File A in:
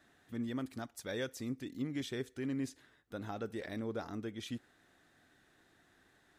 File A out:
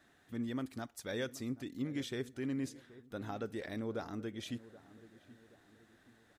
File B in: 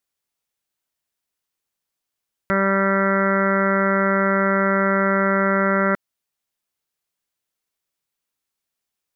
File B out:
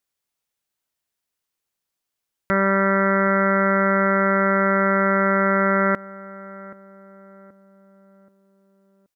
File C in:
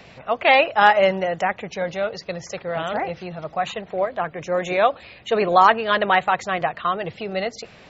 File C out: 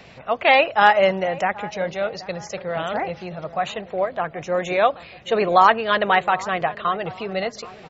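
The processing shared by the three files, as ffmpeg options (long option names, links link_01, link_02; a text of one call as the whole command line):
ffmpeg -i in.wav -filter_complex "[0:a]asplit=2[link_01][link_02];[link_02]adelay=778,lowpass=frequency=1100:poles=1,volume=-17dB,asplit=2[link_03][link_04];[link_04]adelay=778,lowpass=frequency=1100:poles=1,volume=0.46,asplit=2[link_05][link_06];[link_06]adelay=778,lowpass=frequency=1100:poles=1,volume=0.46,asplit=2[link_07][link_08];[link_08]adelay=778,lowpass=frequency=1100:poles=1,volume=0.46[link_09];[link_01][link_03][link_05][link_07][link_09]amix=inputs=5:normalize=0" out.wav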